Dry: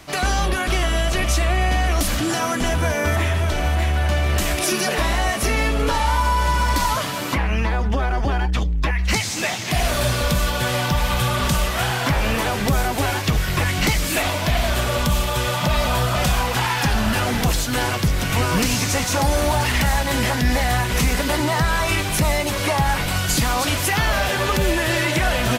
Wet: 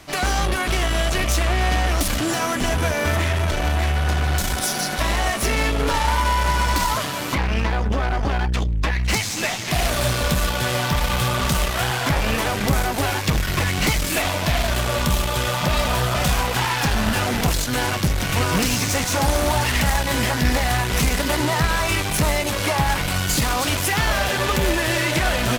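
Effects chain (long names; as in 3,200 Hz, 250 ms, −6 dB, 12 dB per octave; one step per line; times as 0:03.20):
healed spectral selection 0:04.01–0:04.98, 210–3,200 Hz before
harmonic generator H 4 −13 dB, 6 −12 dB, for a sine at −8.5 dBFS
level −1 dB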